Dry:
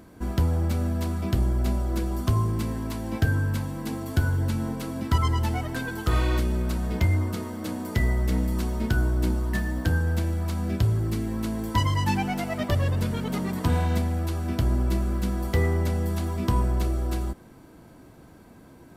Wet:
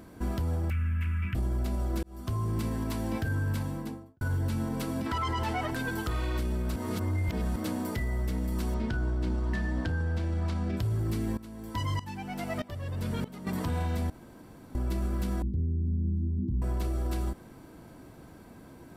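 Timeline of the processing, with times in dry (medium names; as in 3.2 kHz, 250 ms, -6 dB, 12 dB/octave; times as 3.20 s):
0.70–1.35 s: FFT filter 120 Hz 0 dB, 450 Hz -25 dB, 750 Hz -28 dB, 1.4 kHz +1 dB, 2.6 kHz +7 dB, 4 kHz -23 dB, 13 kHz -15 dB
2.03–2.71 s: fade in
3.57–4.21 s: studio fade out
5.06–5.71 s: overdrive pedal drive 14 dB, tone 2.7 kHz, clips at -11.5 dBFS
6.76–7.56 s: reverse
8.74–10.77 s: low-pass 5.3 kHz
11.37–13.47 s: sawtooth tremolo in dB swelling 1.6 Hz, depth 19 dB
14.10–14.75 s: room tone
15.42–16.62 s: inverse Chebyshev low-pass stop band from 580 Hz
whole clip: band-stop 6.6 kHz, Q 29; peak limiter -23 dBFS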